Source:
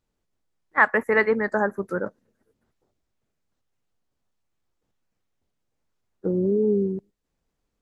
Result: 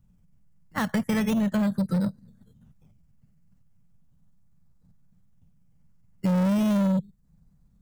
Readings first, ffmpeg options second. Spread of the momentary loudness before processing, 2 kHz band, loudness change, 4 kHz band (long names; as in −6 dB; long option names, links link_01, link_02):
11 LU, −13.5 dB, −2.5 dB, can't be measured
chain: -filter_complex "[0:a]equalizer=frequency=3300:width_type=o:width=1.8:gain=-11.5,tremolo=f=21:d=0.261,acrossover=split=680[link_01][link_02];[link_01]acrusher=samples=14:mix=1:aa=0.000001:lfo=1:lforange=8.4:lforate=0.37[link_03];[link_02]alimiter=limit=-19dB:level=0:latency=1:release=403[link_04];[link_03][link_04]amix=inputs=2:normalize=0,lowshelf=frequency=250:width_type=q:width=3:gain=12.5,asoftclip=type=tanh:threshold=-20.5dB,acompressor=threshold=-31dB:ratio=3,volume=6.5dB"